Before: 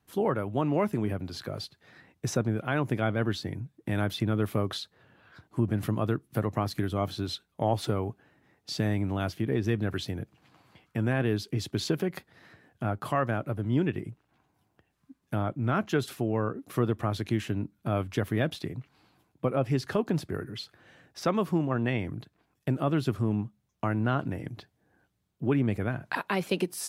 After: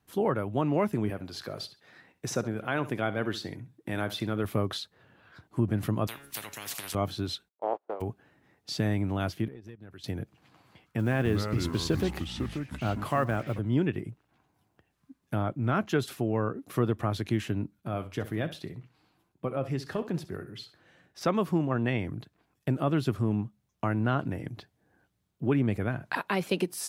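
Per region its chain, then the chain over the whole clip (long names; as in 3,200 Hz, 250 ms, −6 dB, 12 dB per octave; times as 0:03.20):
0:01.10–0:04.45: low-shelf EQ 170 Hz −10 dB + repeating echo 66 ms, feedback 23%, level −15 dB
0:06.07–0:06.95: tuned comb filter 140 Hz, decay 0.3 s, mix 50% + every bin compressed towards the loudest bin 10 to 1
0:07.48–0:08.00: compressing power law on the bin magnitudes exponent 0.34 + noise gate −29 dBFS, range −28 dB + flat-topped band-pass 590 Hz, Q 1.2
0:09.48–0:10.04: noise gate −25 dBFS, range −16 dB + downward compressor 10 to 1, threshold −40 dBFS
0:10.99–0:13.59: one scale factor per block 7 bits + single-tap delay 123 ms −20.5 dB + delay with pitch and tempo change per echo 265 ms, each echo −4 semitones, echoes 3, each echo −6 dB
0:17.80–0:21.21: flutter between parallel walls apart 11.1 metres, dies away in 0.28 s + flanger 1.2 Hz, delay 5.1 ms, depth 1.5 ms, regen +81%
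whole clip: no processing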